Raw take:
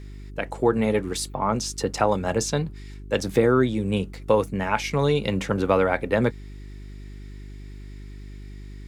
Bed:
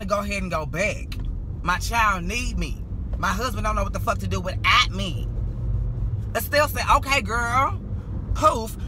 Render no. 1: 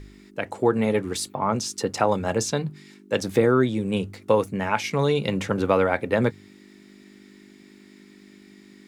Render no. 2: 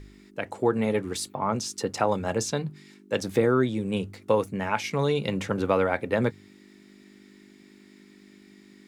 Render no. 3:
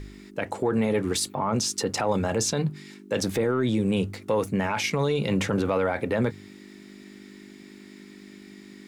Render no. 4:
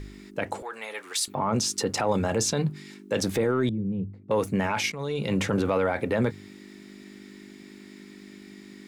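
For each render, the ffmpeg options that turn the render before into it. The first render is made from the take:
-af "bandreject=f=50:t=h:w=4,bandreject=f=100:t=h:w=4,bandreject=f=150:t=h:w=4"
-af "volume=-3dB"
-af "acontrast=64,alimiter=limit=-16dB:level=0:latency=1:release=28"
-filter_complex "[0:a]asettb=1/sr,asplit=3[a][b][c];[a]atrim=end=0.624[d];[b]atrim=start=0.62:end=1.28,asetpts=PTS-STARTPTS,afade=t=in:d=0.004:c=qsin,afade=t=out:st=0.656:d=0.004:c=qsin,highpass=1.1k[e];[c]atrim=start=1.276[f];[d][e]acrossfade=d=0.004:c1=hsin:c2=qsin[g];[g][f]acrossfade=d=0.004:c1=qsin:c2=hsin,asettb=1/sr,asplit=3[h][i][j];[h]atrim=end=3.694[k];[i]atrim=start=3.69:end=4.31,asetpts=PTS-STARTPTS,afade=t=in:d=0.004:c=qsin,afade=t=out:st=0.616:d=0.004:c=qsin,bandpass=f=140:t=q:w=1.6[l];[j]atrim=start=4.306[m];[k][l]acrossfade=d=0.004:c1=hsin:c2=qsin[n];[n][m]acrossfade=d=0.004:c1=qsin:c2=hsin,asplit=2[o][p];[o]atrim=end=4.92,asetpts=PTS-STARTPTS,afade=t=out:st=4.916:d=0.004:c=hsin:silence=0.199526[q];[p]atrim=start=4.92,asetpts=PTS-STARTPTS,afade=t=in:d=0.66:c=qsin:silence=0.199526[r];[q][r]concat=n=2:v=0:a=1"

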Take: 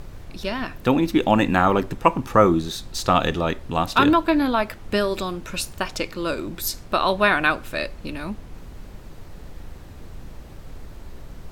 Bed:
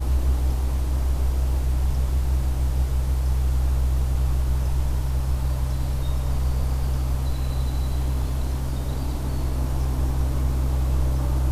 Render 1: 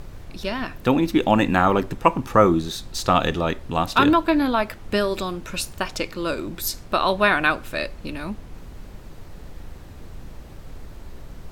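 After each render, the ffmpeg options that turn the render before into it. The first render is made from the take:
-af anull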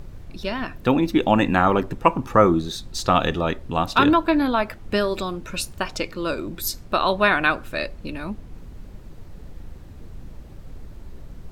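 -af "afftdn=nr=6:nf=-41"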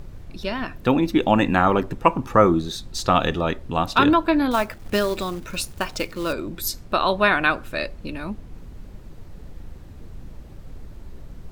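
-filter_complex "[0:a]asettb=1/sr,asplit=3[a][b][c];[a]atrim=end=4.514[d];[b]atrim=start=4.51:end=6.33,asetpts=PTS-STARTPTS,afade=t=in:d=0.004:c=qsin,afade=t=out:st=1.816:d=0.004:c=qsin,acrusher=bits=4:mode=log:mix=0:aa=0.000001[e];[c]atrim=start=6.326[f];[d][e]acrossfade=d=0.004:c1=hsin:c2=qsin[g];[g][f]acrossfade=d=0.004:c1=qsin:c2=hsin"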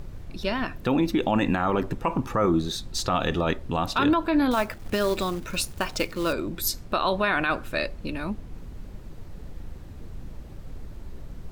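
-af "alimiter=limit=-13.5dB:level=0:latency=1:release=44"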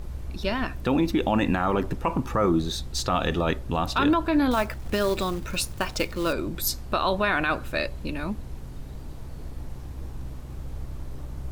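-filter_complex "[1:a]volume=-16dB[a];[0:a][a]amix=inputs=2:normalize=0"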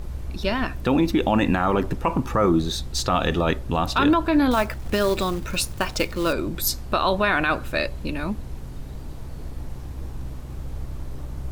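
-af "volume=3dB"

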